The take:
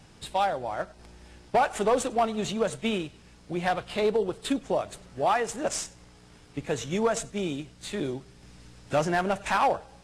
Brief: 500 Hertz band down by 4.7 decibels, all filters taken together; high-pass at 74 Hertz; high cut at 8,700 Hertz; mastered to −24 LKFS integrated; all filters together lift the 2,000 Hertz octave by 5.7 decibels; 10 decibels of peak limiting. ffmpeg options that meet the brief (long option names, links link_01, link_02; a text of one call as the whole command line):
ffmpeg -i in.wav -af "highpass=74,lowpass=8700,equalizer=frequency=500:width_type=o:gain=-6.5,equalizer=frequency=2000:width_type=o:gain=8,volume=8.5dB,alimiter=limit=-11.5dB:level=0:latency=1" out.wav